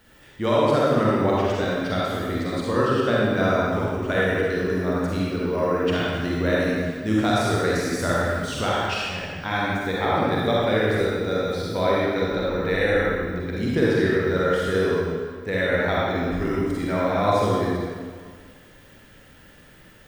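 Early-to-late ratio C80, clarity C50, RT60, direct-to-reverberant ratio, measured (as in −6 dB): −2.0 dB, −5.0 dB, 1.8 s, −6.5 dB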